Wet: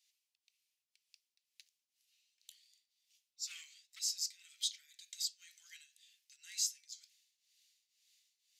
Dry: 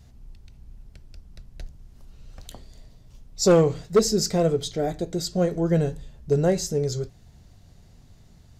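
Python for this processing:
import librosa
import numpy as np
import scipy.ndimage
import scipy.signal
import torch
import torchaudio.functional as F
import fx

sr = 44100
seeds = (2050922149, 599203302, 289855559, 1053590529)

y = scipy.signal.sosfilt(scipy.signal.butter(6, 2300.0, 'highpass', fs=sr, output='sos'), x)
y = fx.rider(y, sr, range_db=3, speed_s=0.5)
y = fx.tremolo_shape(y, sr, shape='triangle', hz=2.0, depth_pct=85)
y = F.gain(torch.from_numpy(y), -4.5).numpy()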